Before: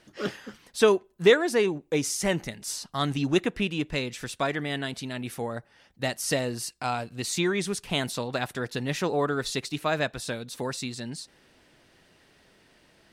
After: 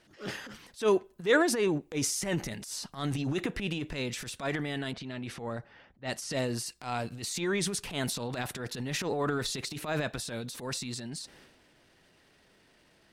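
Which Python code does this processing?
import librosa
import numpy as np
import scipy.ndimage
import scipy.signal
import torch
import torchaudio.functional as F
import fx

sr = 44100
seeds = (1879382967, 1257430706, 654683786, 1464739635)

y = fx.transient(x, sr, attack_db=-12, sustain_db=8)
y = fx.env_lowpass(y, sr, base_hz=1600.0, full_db=-25.5, at=(4.93, 6.66))
y = F.gain(torch.from_numpy(y), -3.5).numpy()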